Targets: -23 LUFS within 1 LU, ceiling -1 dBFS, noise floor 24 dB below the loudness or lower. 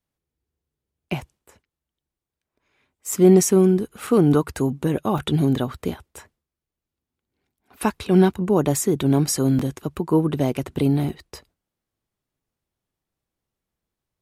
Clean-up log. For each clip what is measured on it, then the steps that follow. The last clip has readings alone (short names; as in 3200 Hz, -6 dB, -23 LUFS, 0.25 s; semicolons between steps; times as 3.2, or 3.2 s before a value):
dropouts 6; longest dropout 3.8 ms; loudness -20.5 LUFS; peak -4.5 dBFS; loudness target -23.0 LUFS
-> interpolate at 3.12/4.07/5.18/5.74/9.59/11.09, 3.8 ms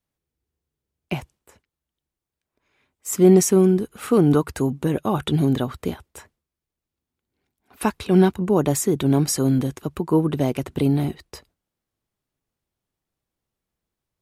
dropouts 0; loudness -20.5 LUFS; peak -4.5 dBFS; loudness target -23.0 LUFS
-> gain -2.5 dB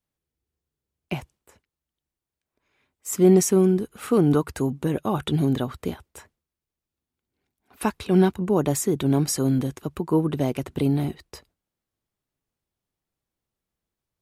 loudness -23.0 LUFS; peak -7.0 dBFS; noise floor -88 dBFS